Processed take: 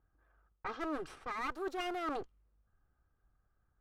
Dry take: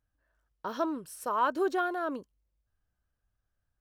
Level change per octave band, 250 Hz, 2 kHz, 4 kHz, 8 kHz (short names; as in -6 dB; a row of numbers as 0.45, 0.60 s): -7.0, -5.0, -0.5, -11.0 dB